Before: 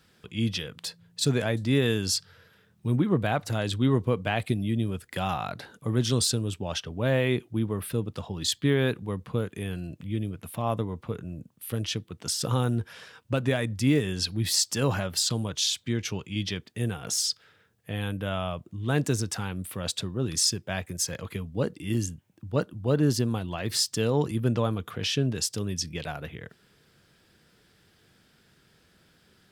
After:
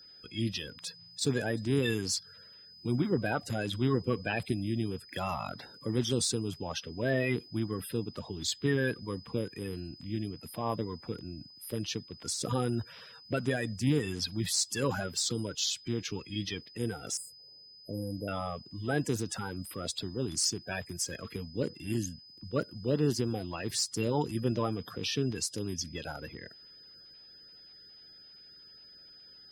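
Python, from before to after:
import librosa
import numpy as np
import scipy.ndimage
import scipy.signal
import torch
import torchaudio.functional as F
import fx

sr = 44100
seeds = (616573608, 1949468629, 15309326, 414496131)

y = fx.spec_quant(x, sr, step_db=30)
y = fx.cheby2_bandstop(y, sr, low_hz=1300.0, high_hz=6000.0, order=4, stop_db=40, at=(17.17, 18.28))
y = y + 10.0 ** (-47.0 / 20.0) * np.sin(2.0 * np.pi * 5000.0 * np.arange(len(y)) / sr)
y = F.gain(torch.from_numpy(y), -4.5).numpy()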